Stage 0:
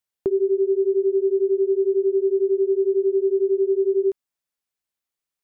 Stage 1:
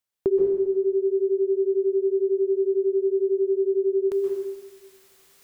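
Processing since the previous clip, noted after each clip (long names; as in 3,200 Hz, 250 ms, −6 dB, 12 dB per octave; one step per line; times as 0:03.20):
reversed playback
upward compression, threshold −37 dBFS
reversed playback
dense smooth reverb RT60 1.3 s, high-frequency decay 0.9×, pre-delay 115 ms, DRR 1 dB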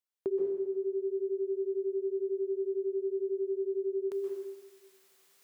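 high-pass filter 300 Hz 6 dB per octave
level −8 dB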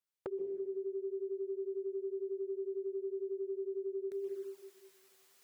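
downward compressor 8 to 1, threshold −37 dBFS, peak gain reduction 10.5 dB
flanger swept by the level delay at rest 10 ms, full sweep at −36 dBFS
level +2 dB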